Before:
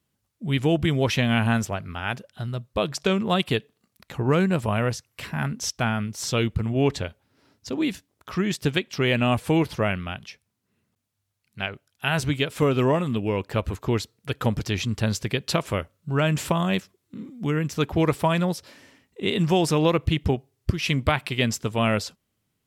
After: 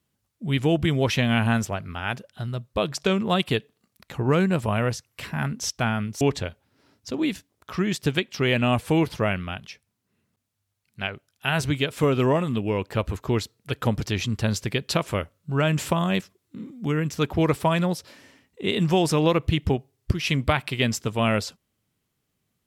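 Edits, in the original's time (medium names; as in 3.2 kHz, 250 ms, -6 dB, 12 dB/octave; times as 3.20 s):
6.21–6.80 s: delete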